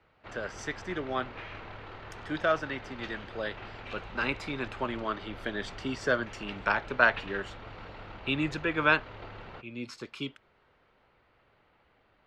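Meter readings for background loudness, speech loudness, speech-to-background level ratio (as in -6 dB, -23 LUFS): -45.0 LUFS, -32.0 LUFS, 13.0 dB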